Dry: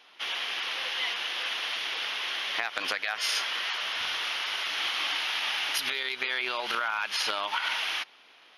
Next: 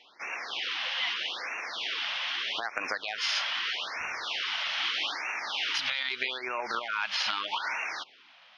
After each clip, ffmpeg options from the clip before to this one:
-af "lowpass=f=5800:w=0.5412,lowpass=f=5800:w=1.3066,afftfilt=real='re*(1-between(b*sr/1024,340*pow(4000/340,0.5+0.5*sin(2*PI*0.8*pts/sr))/1.41,340*pow(4000/340,0.5+0.5*sin(2*PI*0.8*pts/sr))*1.41))':imag='im*(1-between(b*sr/1024,340*pow(4000/340,0.5+0.5*sin(2*PI*0.8*pts/sr))/1.41,340*pow(4000/340,0.5+0.5*sin(2*PI*0.8*pts/sr))*1.41))':win_size=1024:overlap=0.75"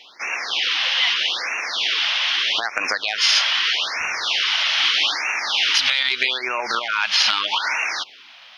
-af "highshelf=f=2700:g=9.5,acontrast=28,volume=1.26"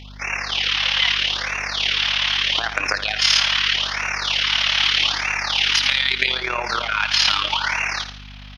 -af "aecho=1:1:72|144|216|288|360:0.299|0.128|0.0552|0.0237|0.0102,tremolo=f=36:d=0.667,aeval=exprs='val(0)+0.00891*(sin(2*PI*50*n/s)+sin(2*PI*2*50*n/s)/2+sin(2*PI*3*50*n/s)/3+sin(2*PI*4*50*n/s)/4+sin(2*PI*5*50*n/s)/5)':c=same,volume=1.41"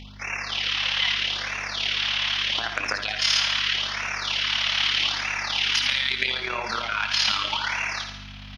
-af "equalizer=f=220:w=8:g=11,areverse,acompressor=mode=upward:threshold=0.0398:ratio=2.5,areverse,aecho=1:1:69|138|207|276|345|414|483:0.316|0.18|0.103|0.0586|0.0334|0.019|0.0108,volume=0.531"

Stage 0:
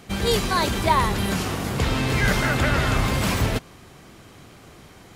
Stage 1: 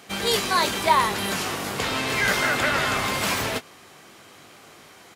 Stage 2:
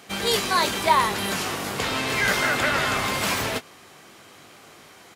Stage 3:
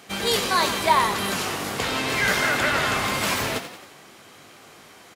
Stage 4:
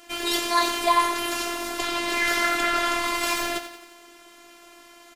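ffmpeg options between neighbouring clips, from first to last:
-filter_complex "[0:a]highpass=f=590:p=1,asplit=2[s0][s1];[s1]adelay=20,volume=0.299[s2];[s0][s2]amix=inputs=2:normalize=0,volume=1.26"
-af anull
-filter_complex "[0:a]asplit=7[s0][s1][s2][s3][s4][s5][s6];[s1]adelay=89,afreqshift=38,volume=0.282[s7];[s2]adelay=178,afreqshift=76,volume=0.151[s8];[s3]adelay=267,afreqshift=114,volume=0.0822[s9];[s4]adelay=356,afreqshift=152,volume=0.0442[s10];[s5]adelay=445,afreqshift=190,volume=0.024[s11];[s6]adelay=534,afreqshift=228,volume=0.0129[s12];[s0][s7][s8][s9][s10][s11][s12]amix=inputs=7:normalize=0"
-af "afftfilt=real='hypot(re,im)*cos(PI*b)':imag='0':win_size=512:overlap=0.75,volume=1.26"

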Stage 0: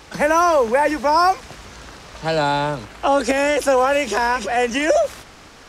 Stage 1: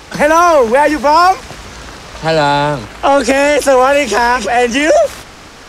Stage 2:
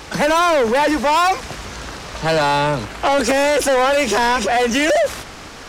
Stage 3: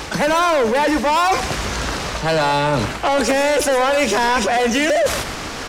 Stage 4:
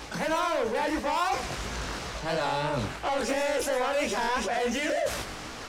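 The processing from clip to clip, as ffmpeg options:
-af "acontrast=83,volume=1.19"
-af "aeval=exprs='0.891*(cos(1*acos(clip(val(0)/0.891,-1,1)))-cos(1*PI/2))+0.158*(cos(5*acos(clip(val(0)/0.891,-1,1)))-cos(5*PI/2))':c=same,asoftclip=type=tanh:threshold=0.708,volume=0.501"
-af "areverse,acompressor=threshold=0.0708:ratio=10,areverse,aecho=1:1:119:0.224,volume=2.37"
-af "flanger=delay=15.5:depth=7.5:speed=2.9,volume=0.376"

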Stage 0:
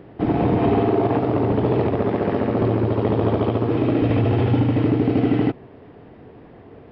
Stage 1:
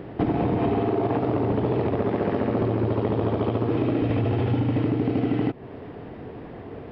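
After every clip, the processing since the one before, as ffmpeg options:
-af "acompressor=threshold=0.0501:ratio=6,volume=1.88"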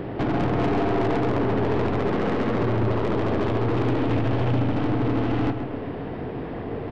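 -filter_complex "[0:a]aeval=exprs='(tanh(28.2*val(0)+0.3)-tanh(0.3))/28.2':c=same,asplit=2[s0][s1];[s1]adelay=132,lowpass=f=3700:p=1,volume=0.422,asplit=2[s2][s3];[s3]adelay=132,lowpass=f=3700:p=1,volume=0.51,asplit=2[s4][s5];[s5]adelay=132,lowpass=f=3700:p=1,volume=0.51,asplit=2[s6][s7];[s7]adelay=132,lowpass=f=3700:p=1,volume=0.51,asplit=2[s8][s9];[s9]adelay=132,lowpass=f=3700:p=1,volume=0.51,asplit=2[s10][s11];[s11]adelay=132,lowpass=f=3700:p=1,volume=0.51[s12];[s0][s2][s4][s6][s8][s10][s12]amix=inputs=7:normalize=0,volume=2.37"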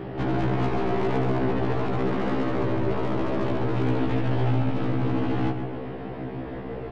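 -af "afftfilt=real='re*1.73*eq(mod(b,3),0)':imag='im*1.73*eq(mod(b,3),0)':win_size=2048:overlap=0.75"

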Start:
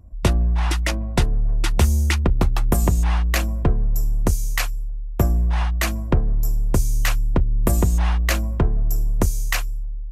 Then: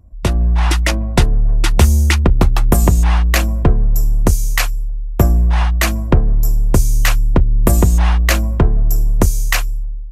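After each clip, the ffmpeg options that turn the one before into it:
-af "dynaudnorm=f=150:g=5:m=3.76"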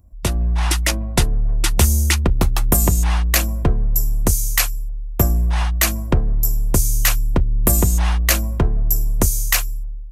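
-af "crystalizer=i=2:c=0,volume=0.562"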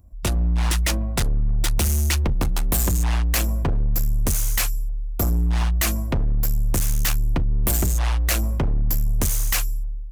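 -af "asoftclip=type=hard:threshold=0.133"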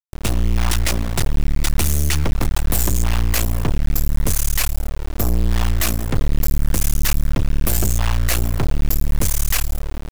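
-af "acrusher=bits=3:dc=4:mix=0:aa=0.000001,volume=2"

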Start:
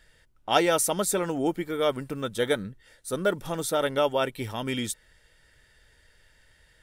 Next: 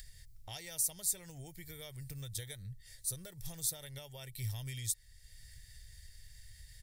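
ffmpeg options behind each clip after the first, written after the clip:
-af "acompressor=threshold=0.0282:ratio=5,firequalizer=gain_entry='entry(120,0);entry(230,-30);entry(370,-25);entry(730,-22);entry(1300,-29);entry(1900,-11);entry(2900,-15);entry(4300,-2);entry(10000,0);entry(15000,5)':delay=0.05:min_phase=1,acompressor=mode=upward:threshold=0.00447:ratio=2.5,volume=1.41"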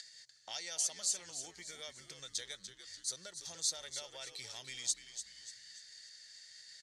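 -filter_complex "[0:a]asplit=2[s0][s1];[s1]asoftclip=type=tanh:threshold=0.0398,volume=0.335[s2];[s0][s2]amix=inputs=2:normalize=0,highpass=f=250:w=0.5412,highpass=f=250:w=1.3066,equalizer=f=290:t=q:w=4:g=-7,equalizer=f=420:t=q:w=4:g=-6,equalizer=f=1400:t=q:w=4:g=5,equalizer=f=4400:t=q:w=4:g=9,equalizer=f=6400:t=q:w=4:g=8,lowpass=f=7700:w=0.5412,lowpass=f=7700:w=1.3066,asplit=6[s3][s4][s5][s6][s7][s8];[s4]adelay=293,afreqshift=-94,volume=0.316[s9];[s5]adelay=586,afreqshift=-188,volume=0.136[s10];[s6]adelay=879,afreqshift=-282,volume=0.0582[s11];[s7]adelay=1172,afreqshift=-376,volume=0.0251[s12];[s8]adelay=1465,afreqshift=-470,volume=0.0108[s13];[s3][s9][s10][s11][s12][s13]amix=inputs=6:normalize=0,volume=0.891"

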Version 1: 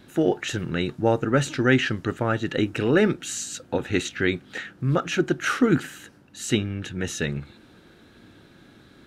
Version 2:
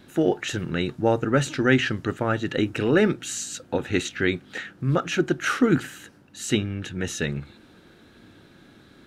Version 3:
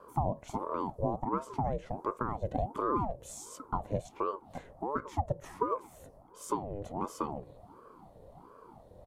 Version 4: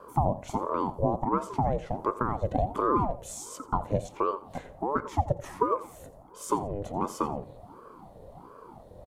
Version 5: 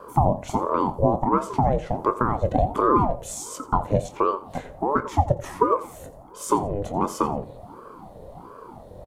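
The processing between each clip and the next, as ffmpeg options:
-af "bandreject=f=60:t=h:w=6,bandreject=f=120:t=h:w=6"
-af "acompressor=threshold=0.0447:ratio=10,firequalizer=gain_entry='entry(150,0);entry(290,10);entry(780,8);entry(1200,-13);entry(2800,-15);entry(10000,2)':delay=0.05:min_phase=1,aeval=exprs='val(0)*sin(2*PI*500*n/s+500*0.6/1.4*sin(2*PI*1.4*n/s))':c=same,volume=0.501"
-af "aecho=1:1:86|172:0.141|0.0353,volume=1.88"
-filter_complex "[0:a]asplit=2[s0][s1];[s1]adelay=24,volume=0.224[s2];[s0][s2]amix=inputs=2:normalize=0,volume=2"

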